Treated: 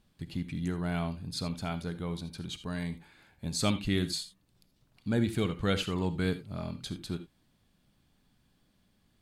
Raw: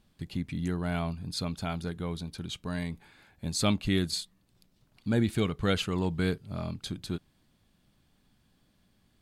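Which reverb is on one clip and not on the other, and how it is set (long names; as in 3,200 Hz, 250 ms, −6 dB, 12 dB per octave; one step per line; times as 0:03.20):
reverb whose tail is shaped and stops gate 100 ms rising, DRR 11.5 dB
level −2 dB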